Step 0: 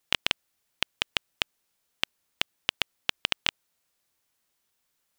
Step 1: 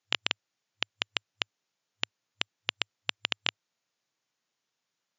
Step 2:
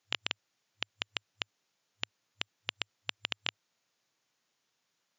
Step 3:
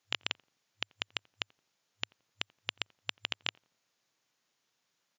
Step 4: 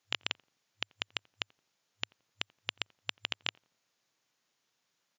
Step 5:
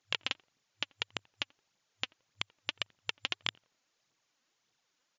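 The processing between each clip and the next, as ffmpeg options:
ffmpeg -i in.wav -af "afftfilt=real='re*between(b*sr/4096,100,7200)':imag='im*between(b*sr/4096,100,7200)':win_size=4096:overlap=0.75,volume=-3.5dB" out.wav
ffmpeg -i in.wav -af "alimiter=limit=-15.5dB:level=0:latency=1:release=71,volume=4dB" out.wav
ffmpeg -i in.wav -filter_complex "[0:a]asplit=2[link_01][link_02];[link_02]adelay=86,lowpass=frequency=980:poles=1,volume=-24dB,asplit=2[link_03][link_04];[link_04]adelay=86,lowpass=frequency=980:poles=1,volume=0.4,asplit=2[link_05][link_06];[link_06]adelay=86,lowpass=frequency=980:poles=1,volume=0.4[link_07];[link_01][link_03][link_05][link_07]amix=inputs=4:normalize=0" out.wav
ffmpeg -i in.wav -af anull out.wav
ffmpeg -i in.wav -af "aphaser=in_gain=1:out_gain=1:delay=4.1:decay=0.49:speed=1.7:type=triangular,aresample=16000,aresample=44100" out.wav

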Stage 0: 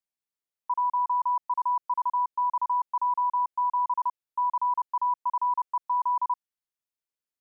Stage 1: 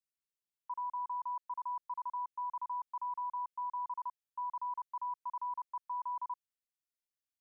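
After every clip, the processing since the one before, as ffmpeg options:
ffmpeg -i in.wav -af "equalizer=frequency=680:width=0.91:gain=-12,volume=-4.5dB" out.wav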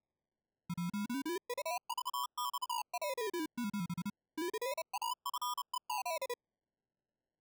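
ffmpeg -i in.wav -af "acrusher=samples=29:mix=1:aa=0.000001:lfo=1:lforange=17.4:lforate=0.32" out.wav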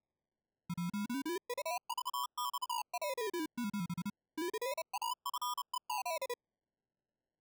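ffmpeg -i in.wav -af anull out.wav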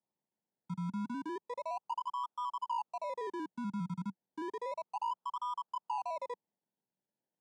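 ffmpeg -i in.wav -filter_complex "[0:a]highpass=frequency=120:width=0.5412,highpass=frequency=120:width=1.3066,equalizer=frequency=190:width_type=q:width=4:gain=5,equalizer=frequency=910:width_type=q:width=4:gain=7,equalizer=frequency=2400:width_type=q:width=4:gain=-8,lowpass=frequency=9000:width=0.5412,lowpass=frequency=9000:width=1.3066,acrossover=split=2600[link_01][link_02];[link_02]acompressor=threshold=-60dB:ratio=4:attack=1:release=60[link_03];[link_01][link_03]amix=inputs=2:normalize=0,volume=-2dB" out.wav

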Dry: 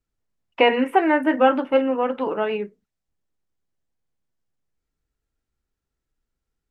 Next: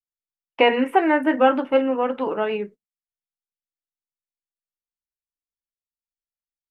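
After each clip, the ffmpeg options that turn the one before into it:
ffmpeg -i in.wav -af "agate=range=-29dB:threshold=-39dB:ratio=16:detection=peak" out.wav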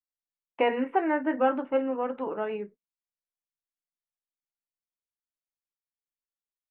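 ffmpeg -i in.wav -af "lowpass=2100,volume=-7.5dB" out.wav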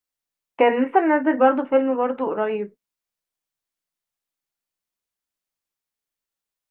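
ffmpeg -i in.wav -filter_complex "[0:a]acrossover=split=2900[link_01][link_02];[link_02]acompressor=threshold=-55dB:ratio=4:attack=1:release=60[link_03];[link_01][link_03]amix=inputs=2:normalize=0,volume=8dB" out.wav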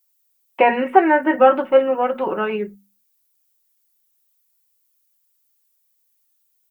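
ffmpeg -i in.wav -af "aemphasis=mode=production:type=75fm,bandreject=frequency=50:width_type=h:width=6,bandreject=frequency=100:width_type=h:width=6,bandreject=frequency=150:width_type=h:width=6,bandreject=frequency=200:width_type=h:width=6,bandreject=frequency=250:width_type=h:width=6,aecho=1:1:5.4:0.65,volume=2dB" out.wav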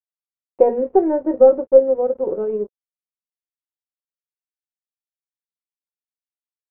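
ffmpeg -i in.wav -af "aeval=exprs='0.891*(cos(1*acos(clip(val(0)/0.891,-1,1)))-cos(1*PI/2))+0.0251*(cos(4*acos(clip(val(0)/0.891,-1,1)))-cos(4*PI/2))':channel_layout=same,aeval=exprs='sgn(val(0))*max(abs(val(0))-0.0237,0)':channel_layout=same,lowpass=frequency=480:width_type=q:width=3.5,volume=-4.5dB" out.wav

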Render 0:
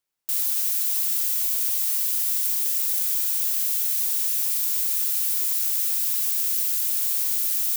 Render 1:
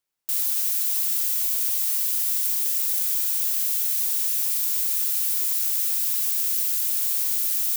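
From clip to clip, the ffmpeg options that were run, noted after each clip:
ffmpeg -i in.wav -af anull out.wav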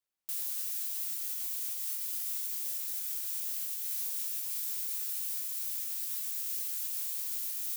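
ffmpeg -i in.wav -af "alimiter=limit=-17dB:level=0:latency=1:release=369,flanger=delay=20:depth=3.7:speed=0.49,volume=-4dB" out.wav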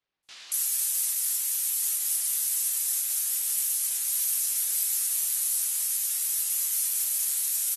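ffmpeg -i in.wav -filter_complex "[0:a]aemphasis=mode=production:type=cd,acrossover=split=4100[link_01][link_02];[link_02]adelay=230[link_03];[link_01][link_03]amix=inputs=2:normalize=0,volume=7dB" -ar 44100 -c:a aac -b:a 32k out.aac

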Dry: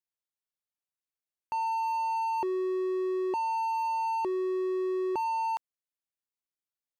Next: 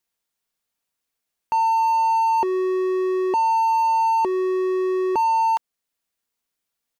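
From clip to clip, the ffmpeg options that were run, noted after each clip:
ffmpeg -i in.wav -filter_complex "[0:a]aecho=1:1:4.3:0.3,asplit=2[link_01][link_02];[link_02]alimiter=level_in=7dB:limit=-24dB:level=0:latency=1:release=398,volume=-7dB,volume=0.5dB[link_03];[link_01][link_03]amix=inputs=2:normalize=0,volume=6dB" out.wav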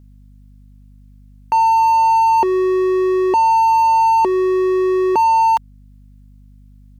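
ffmpeg -i in.wav -af "aeval=exprs='val(0)+0.00355*(sin(2*PI*50*n/s)+sin(2*PI*2*50*n/s)/2+sin(2*PI*3*50*n/s)/3+sin(2*PI*4*50*n/s)/4+sin(2*PI*5*50*n/s)/5)':channel_layout=same,volume=6dB" out.wav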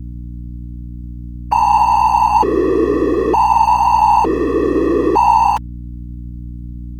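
ffmpeg -i in.wav -af "afftfilt=real='hypot(re,im)*cos(2*PI*random(0))':imag='hypot(re,im)*sin(2*PI*random(1))':win_size=512:overlap=0.75,aeval=exprs='0.376*(cos(1*acos(clip(val(0)/0.376,-1,1)))-cos(1*PI/2))+0.00266*(cos(6*acos(clip(val(0)/0.376,-1,1)))-cos(6*PI/2))':channel_layout=same,aeval=exprs='val(0)+0.02*(sin(2*PI*60*n/s)+sin(2*PI*2*60*n/s)/2+sin(2*PI*3*60*n/s)/3+sin(2*PI*4*60*n/s)/4+sin(2*PI*5*60*n/s)/5)':channel_layout=same,volume=7dB" out.wav

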